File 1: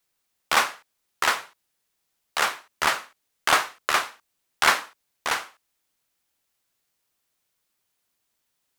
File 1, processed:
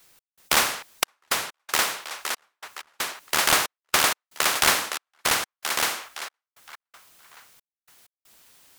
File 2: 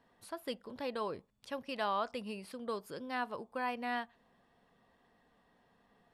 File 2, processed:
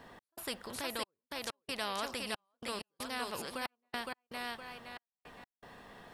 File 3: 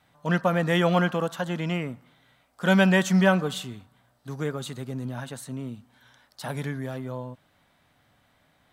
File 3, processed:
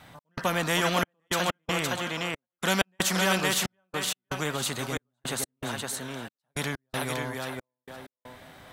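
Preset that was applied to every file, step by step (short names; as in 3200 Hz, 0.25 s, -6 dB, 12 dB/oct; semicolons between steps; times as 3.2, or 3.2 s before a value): thinning echo 0.514 s, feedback 21%, high-pass 300 Hz, level -3 dB; step gate "xx..xxxxxxx..." 160 bpm -60 dB; spectral compressor 2:1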